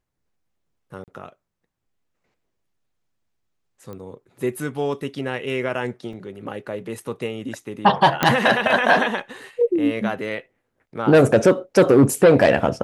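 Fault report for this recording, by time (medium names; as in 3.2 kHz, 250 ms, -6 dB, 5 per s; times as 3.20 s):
1.04–1.08 s: dropout 38 ms
3.93 s: pop -24 dBFS
6.13 s: dropout 3 ms
8.23 s: pop -3 dBFS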